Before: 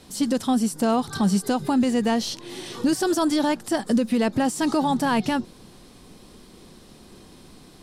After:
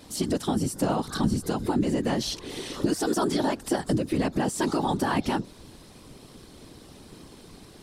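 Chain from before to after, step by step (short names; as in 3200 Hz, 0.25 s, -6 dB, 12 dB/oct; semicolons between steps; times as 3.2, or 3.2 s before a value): 1.24–2.02 low shelf 160 Hz +9 dB; compressor, threshold -22 dBFS, peak gain reduction 9 dB; whisperiser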